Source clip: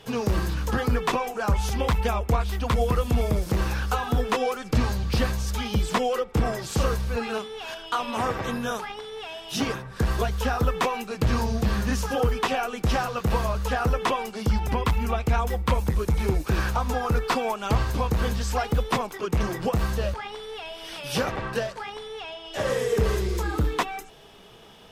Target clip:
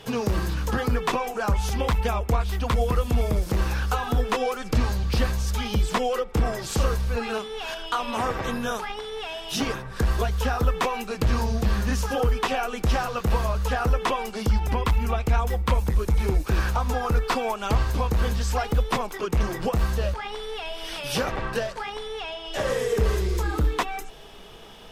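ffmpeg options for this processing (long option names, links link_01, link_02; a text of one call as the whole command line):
ffmpeg -i in.wav -filter_complex "[0:a]asubboost=boost=3:cutoff=53,asplit=2[link_01][link_02];[link_02]acompressor=threshold=-32dB:ratio=6,volume=0.5dB[link_03];[link_01][link_03]amix=inputs=2:normalize=0,volume=-2.5dB" out.wav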